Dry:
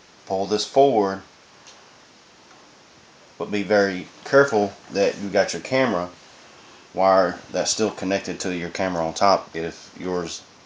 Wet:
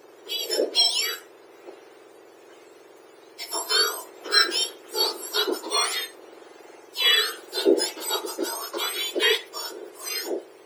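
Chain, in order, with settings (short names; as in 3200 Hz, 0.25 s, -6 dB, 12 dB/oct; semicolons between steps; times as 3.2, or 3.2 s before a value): spectrum mirrored in octaves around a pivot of 1500 Hz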